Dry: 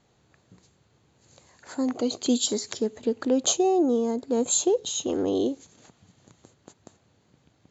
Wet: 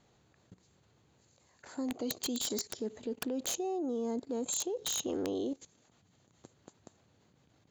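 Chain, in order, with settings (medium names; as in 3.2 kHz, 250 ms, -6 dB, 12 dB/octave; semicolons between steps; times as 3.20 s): level held to a coarse grid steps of 17 dB; integer overflow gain 25.5 dB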